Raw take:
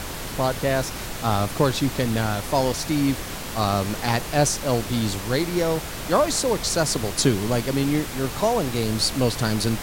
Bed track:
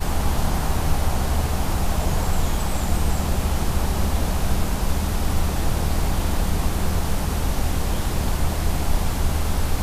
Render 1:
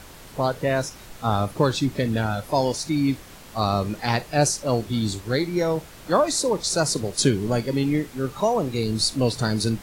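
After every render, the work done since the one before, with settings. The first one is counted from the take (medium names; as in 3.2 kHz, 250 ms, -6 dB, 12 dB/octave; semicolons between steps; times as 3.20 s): noise print and reduce 12 dB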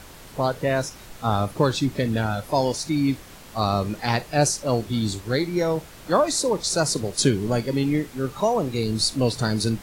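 no audible change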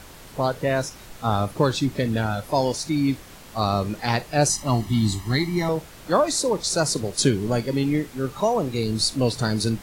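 4.49–5.69 s: comb 1 ms, depth 87%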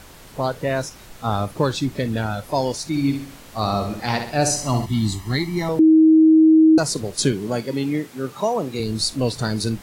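2.87–4.86 s: flutter echo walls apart 11 m, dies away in 0.54 s; 5.79–6.78 s: bleep 317 Hz -8.5 dBFS; 7.32–8.80 s: high-pass 140 Hz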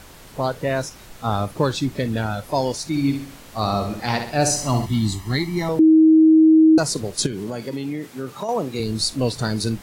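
4.40–4.98 s: companding laws mixed up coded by mu; 7.26–8.49 s: compression, threshold -23 dBFS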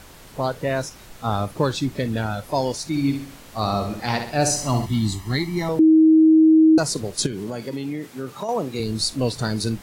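trim -1 dB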